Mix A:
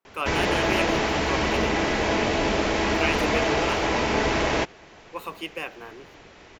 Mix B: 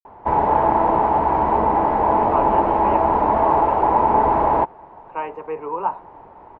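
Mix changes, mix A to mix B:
speech: entry +2.15 s
master: add low-pass with resonance 910 Hz, resonance Q 6.9

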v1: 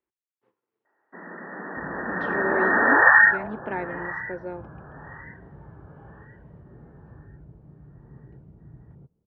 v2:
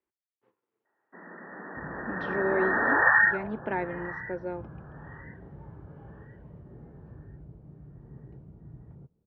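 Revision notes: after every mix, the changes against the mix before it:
first sound −6.0 dB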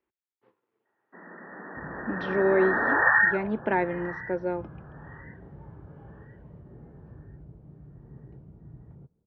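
speech +5.5 dB

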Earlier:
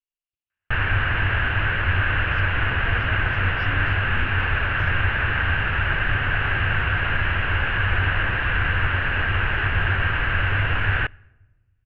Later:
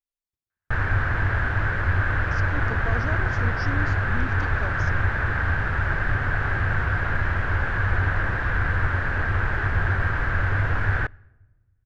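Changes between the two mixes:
speech +6.5 dB
master: remove low-pass with resonance 2,800 Hz, resonance Q 8.2

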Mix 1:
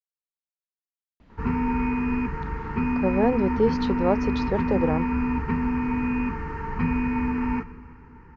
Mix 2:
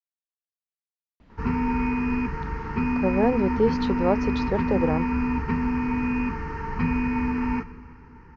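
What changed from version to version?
background: add low-pass with resonance 5,700 Hz, resonance Q 2.5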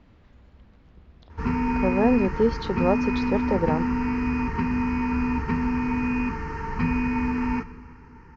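speech: entry −1.20 s
background: remove high-frequency loss of the air 74 metres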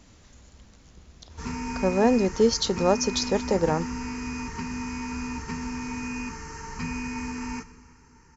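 background −9.0 dB
master: remove high-frequency loss of the air 390 metres

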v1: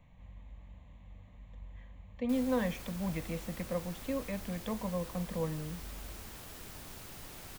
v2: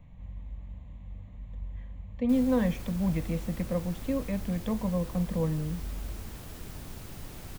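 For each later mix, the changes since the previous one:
master: add low-shelf EQ 370 Hz +10 dB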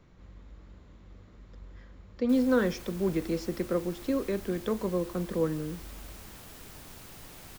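speech: remove phaser with its sweep stopped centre 1,400 Hz, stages 6
master: add low-shelf EQ 370 Hz −10 dB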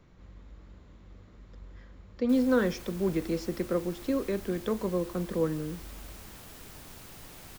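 nothing changed

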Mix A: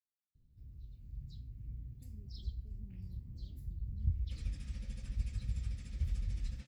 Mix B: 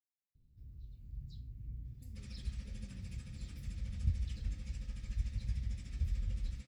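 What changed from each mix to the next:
second sound: entry −2.15 s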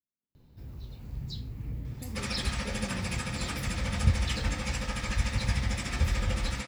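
second sound: remove low-pass filter 9,600 Hz
master: remove guitar amp tone stack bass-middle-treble 10-0-1

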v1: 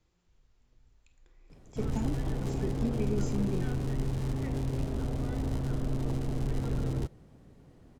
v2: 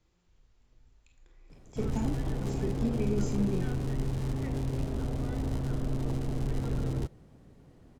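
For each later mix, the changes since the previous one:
speech: send +6.0 dB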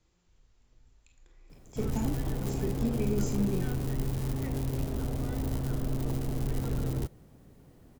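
master: remove high-frequency loss of the air 50 metres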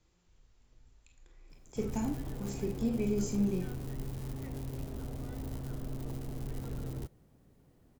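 background −8.0 dB

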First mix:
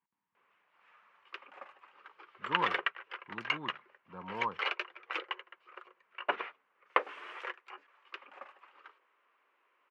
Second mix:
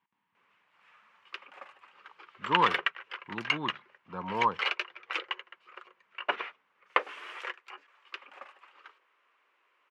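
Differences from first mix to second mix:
speech +7.5 dB
master: add high-shelf EQ 2,900 Hz +10.5 dB

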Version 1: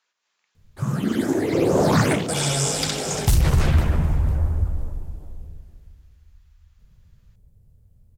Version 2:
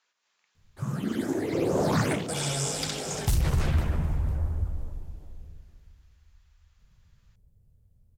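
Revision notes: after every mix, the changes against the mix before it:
background −7.0 dB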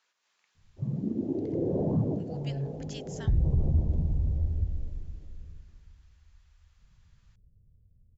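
background: add Gaussian smoothing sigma 15 samples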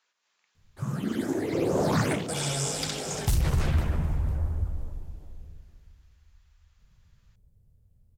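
background: remove Gaussian smoothing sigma 15 samples

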